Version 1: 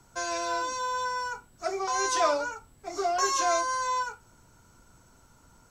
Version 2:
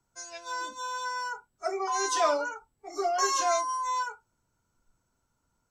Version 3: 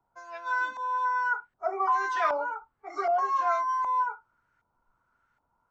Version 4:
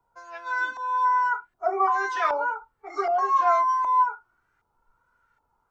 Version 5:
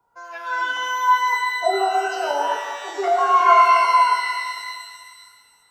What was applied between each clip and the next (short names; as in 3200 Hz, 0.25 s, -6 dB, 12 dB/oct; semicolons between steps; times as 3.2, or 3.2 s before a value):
spectral noise reduction 18 dB
tilt shelf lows -9 dB, about 1200 Hz; compressor 2:1, threshold -33 dBFS, peak gain reduction 8 dB; LFO low-pass saw up 1.3 Hz 780–1800 Hz; gain +4 dB
flange 0.39 Hz, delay 2 ms, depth 1.1 ms, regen +44%; gain +7 dB
spectral gain 1.18–3.04, 990–4200 Hz -21 dB; HPF 140 Hz 6 dB/oct; shimmer reverb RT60 1.9 s, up +12 st, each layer -8 dB, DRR 1 dB; gain +4 dB